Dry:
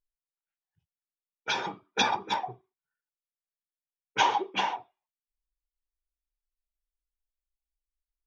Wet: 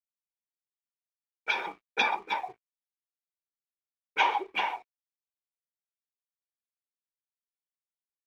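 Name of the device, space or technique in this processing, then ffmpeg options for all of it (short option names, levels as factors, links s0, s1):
pocket radio on a weak battery: -af "highpass=340,lowpass=3500,aeval=exprs='sgn(val(0))*max(abs(val(0))-0.00141,0)':c=same,equalizer=f=2300:t=o:w=0.24:g=10,volume=0.841"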